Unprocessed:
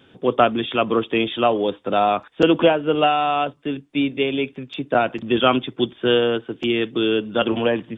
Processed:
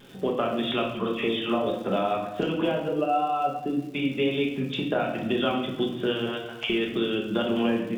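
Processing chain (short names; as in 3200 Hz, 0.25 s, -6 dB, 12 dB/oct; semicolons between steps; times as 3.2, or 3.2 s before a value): 2.88–3.9 spectral contrast raised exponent 1.6; 6.26–6.7 elliptic high-pass 640 Hz; compressor, threshold -26 dBFS, peak gain reduction 15.5 dB; 0.83–1.67 dispersion lows, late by 0.112 s, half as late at 1900 Hz; crackle 200/s -42 dBFS; vibrato 1.9 Hz 35 cents; shoebox room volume 370 m³, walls mixed, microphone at 1.3 m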